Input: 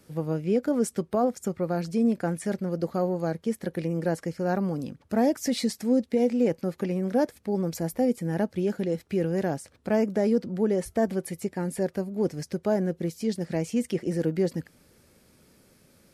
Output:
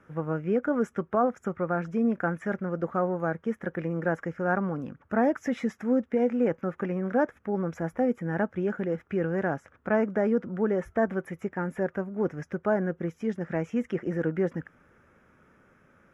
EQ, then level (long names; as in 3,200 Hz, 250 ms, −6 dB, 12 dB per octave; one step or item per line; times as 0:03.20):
moving average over 10 samples
parametric band 1,400 Hz +13.5 dB 1.1 octaves
−2.5 dB